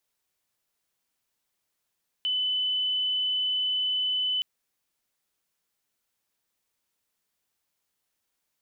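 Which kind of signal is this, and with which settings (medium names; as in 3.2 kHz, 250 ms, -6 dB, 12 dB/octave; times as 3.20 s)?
tone sine 3.01 kHz -24 dBFS 2.17 s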